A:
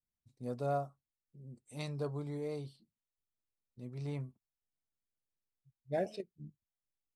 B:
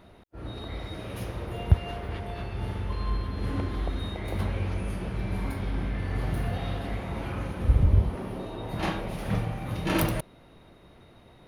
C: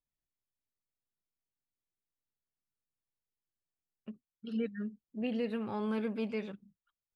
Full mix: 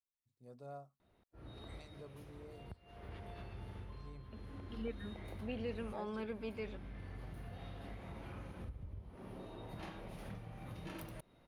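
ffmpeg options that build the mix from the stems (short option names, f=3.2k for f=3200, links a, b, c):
-filter_complex "[0:a]bandreject=f=50:t=h:w=6,bandreject=f=100:t=h:w=6,bandreject=f=150:t=h:w=6,bandreject=f=200:t=h:w=6,bandreject=f=250:t=h:w=6,volume=-15.5dB,asplit=2[a][b];[1:a]acompressor=threshold=-31dB:ratio=16,adelay=1000,volume=-12.5dB[c];[2:a]highpass=260,adelay=250,volume=-5.5dB[d];[b]apad=whole_len=550225[e];[c][e]sidechaincompress=threshold=-56dB:ratio=8:attack=10:release=967[f];[a][f][d]amix=inputs=3:normalize=0"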